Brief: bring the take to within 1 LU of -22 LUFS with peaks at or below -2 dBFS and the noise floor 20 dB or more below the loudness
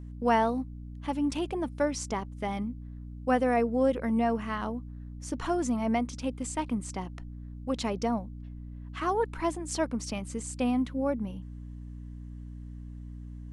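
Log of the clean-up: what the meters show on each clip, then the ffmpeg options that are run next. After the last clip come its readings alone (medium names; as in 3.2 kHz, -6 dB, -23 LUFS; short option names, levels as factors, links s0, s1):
hum 60 Hz; highest harmonic 300 Hz; hum level -39 dBFS; loudness -30.5 LUFS; peak level -12.5 dBFS; loudness target -22.0 LUFS
-> -af "bandreject=f=60:t=h:w=6,bandreject=f=120:t=h:w=6,bandreject=f=180:t=h:w=6,bandreject=f=240:t=h:w=6,bandreject=f=300:t=h:w=6"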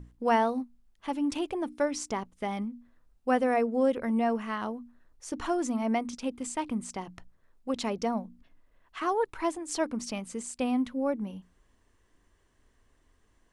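hum not found; loudness -31.0 LUFS; peak level -13.0 dBFS; loudness target -22.0 LUFS
-> -af "volume=2.82"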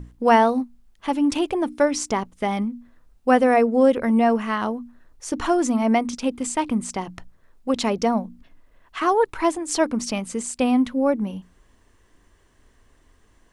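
loudness -22.0 LUFS; peak level -4.0 dBFS; noise floor -59 dBFS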